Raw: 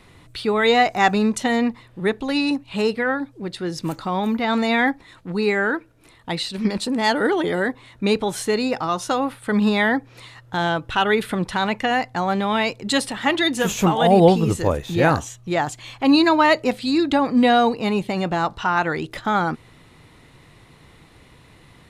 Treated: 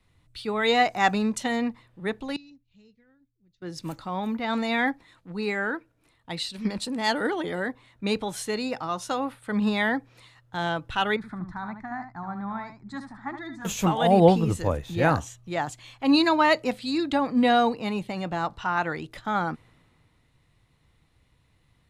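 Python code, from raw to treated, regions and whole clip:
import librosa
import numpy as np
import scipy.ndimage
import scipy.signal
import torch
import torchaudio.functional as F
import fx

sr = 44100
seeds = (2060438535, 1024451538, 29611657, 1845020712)

y = fx.chain(x, sr, fx.tone_stack(knobs='10-0-1'),
    fx.resample_bad(factor=3, down='none', up='filtered'), at=(2.36, 3.62))
y = fx.chain(y, sr, fx.spacing_loss(db_at_10k=25),
    fx.fixed_phaser(hz=1200.0, stages=4),
    fx.echo_single(ms=75, db=-8.0), at=(11.16, 13.65))
y = fx.peak_eq(y, sr, hz=390.0, db=-4.0, octaves=0.29)
y = fx.band_widen(y, sr, depth_pct=40)
y = y * librosa.db_to_amplitude(-6.0)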